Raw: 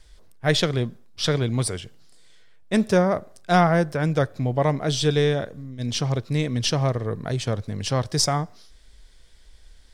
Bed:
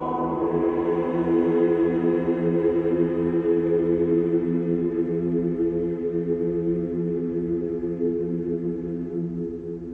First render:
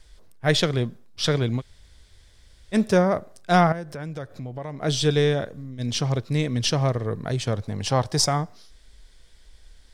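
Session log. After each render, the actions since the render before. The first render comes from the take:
0:01.59–0:02.74: fill with room tone, crossfade 0.06 s
0:03.72–0:04.83: downward compressor 3 to 1, threshold −34 dBFS
0:07.62–0:08.27: parametric band 830 Hz +8 dB 0.64 octaves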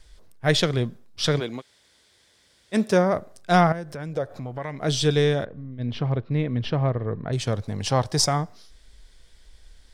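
0:01.39–0:03.11: high-pass filter 340 Hz → 150 Hz
0:04.12–0:04.77: parametric band 450 Hz → 2,400 Hz +10.5 dB 1.2 octaves
0:05.45–0:07.33: high-frequency loss of the air 400 metres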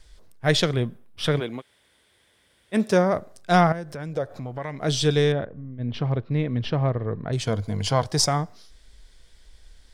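0:00.73–0:02.80: flat-topped bell 5,500 Hz −9 dB 1.1 octaves
0:05.32–0:05.94: high-frequency loss of the air 340 metres
0:07.46–0:08.05: EQ curve with evenly spaced ripples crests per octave 1.8, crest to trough 8 dB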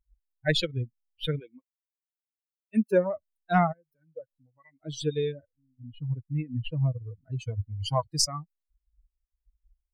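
spectral dynamics exaggerated over time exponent 3
speech leveller within 4 dB 2 s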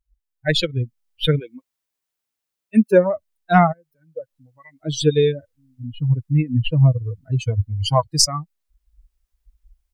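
automatic gain control gain up to 12.5 dB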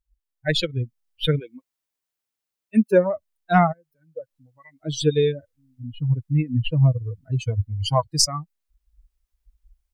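level −3 dB

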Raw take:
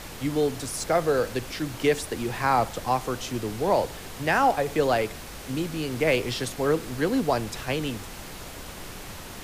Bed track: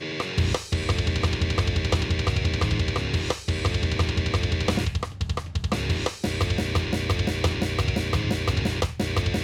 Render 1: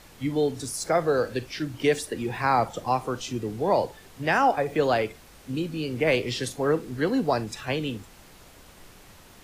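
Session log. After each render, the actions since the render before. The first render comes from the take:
noise reduction from a noise print 11 dB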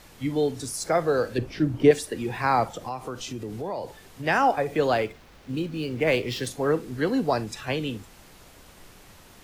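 0:01.38–0:01.91: tilt shelving filter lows +8 dB, about 1,300 Hz
0:02.65–0:04.26: downward compressor 3 to 1, threshold −30 dBFS
0:04.94–0:06.47: running median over 5 samples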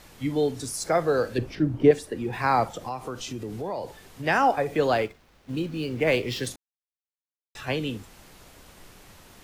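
0:01.55–0:02.33: high-shelf EQ 2,000 Hz −8 dB
0:05.05–0:05.56: mu-law and A-law mismatch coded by A
0:06.56–0:07.55: silence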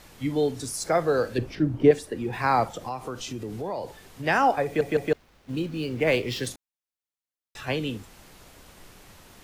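0:04.65: stutter in place 0.16 s, 3 plays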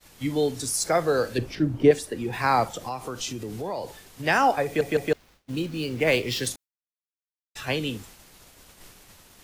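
downward expander −45 dBFS
high-shelf EQ 3,100 Hz +7 dB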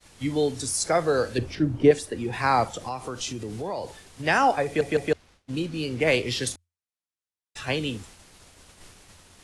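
Butterworth low-pass 11,000 Hz 48 dB per octave
parametric band 86 Hz +9 dB 0.23 octaves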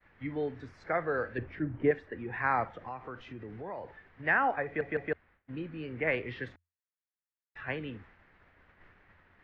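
transistor ladder low-pass 2,100 Hz, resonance 55%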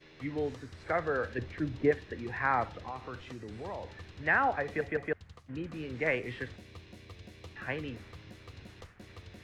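mix in bed track −25.5 dB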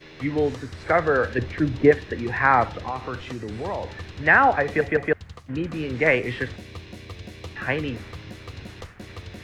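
level +11 dB

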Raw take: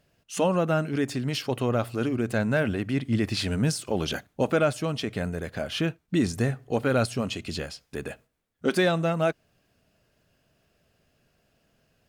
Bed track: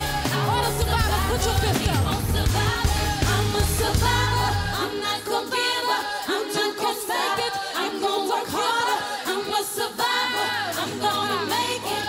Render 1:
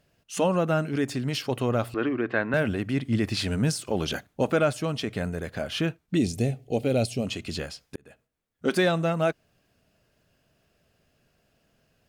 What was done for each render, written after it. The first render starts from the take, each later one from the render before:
0:01.94–0:02.54: loudspeaker in its box 190–3,500 Hz, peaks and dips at 210 Hz −6 dB, 320 Hz +5 dB, 1,100 Hz +7 dB, 1,800 Hz +9 dB
0:06.17–0:07.27: flat-topped bell 1,300 Hz −15.5 dB 1.2 octaves
0:07.96–0:08.72: fade in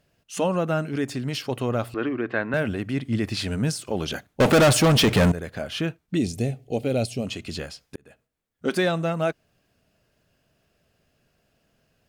0:04.40–0:05.32: leveller curve on the samples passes 5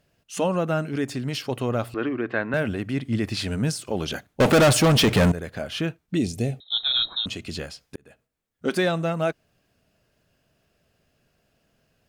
0:06.60–0:07.26: voice inversion scrambler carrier 3,900 Hz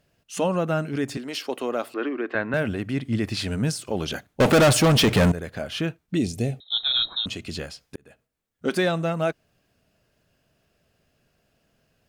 0:01.17–0:02.35: high-pass filter 260 Hz 24 dB per octave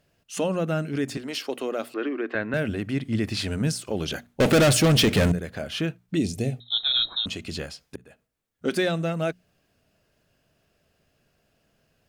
mains-hum notches 60/120/180/240 Hz
dynamic equaliser 960 Hz, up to −7 dB, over −38 dBFS, Q 1.4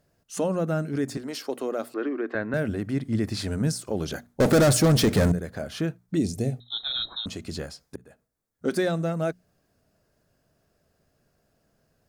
parametric band 2,800 Hz −10.5 dB 0.89 octaves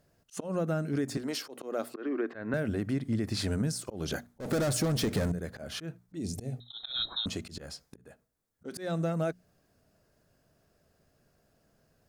downward compressor 10 to 1, threshold −26 dBFS, peak gain reduction 11 dB
volume swells 150 ms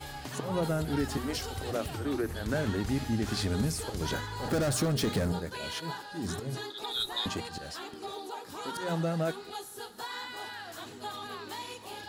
mix in bed track −16.5 dB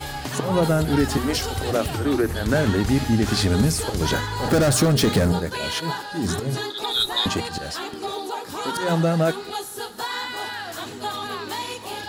level +10.5 dB

